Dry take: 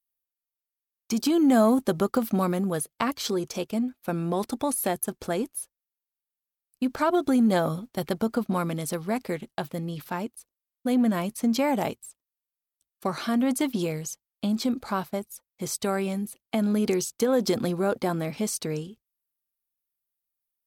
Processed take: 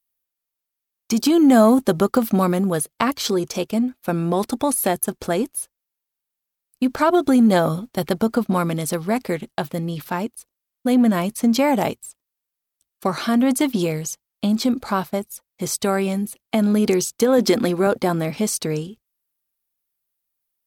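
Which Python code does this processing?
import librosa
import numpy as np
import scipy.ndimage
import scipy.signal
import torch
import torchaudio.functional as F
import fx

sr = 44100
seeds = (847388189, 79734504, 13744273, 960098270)

y = fx.graphic_eq_10(x, sr, hz=(125, 250, 2000), db=(-10, 5, 5), at=(17.38, 17.87))
y = y * 10.0 ** (6.5 / 20.0)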